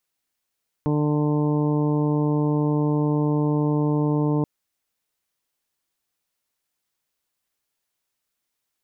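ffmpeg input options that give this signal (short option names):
-f lavfi -i "aevalsrc='0.0841*sin(2*PI*149*t)+0.075*sin(2*PI*298*t)+0.0422*sin(2*PI*447*t)+0.0188*sin(2*PI*596*t)+0.0106*sin(2*PI*745*t)+0.02*sin(2*PI*894*t)+0.0119*sin(2*PI*1043*t)':d=3.58:s=44100"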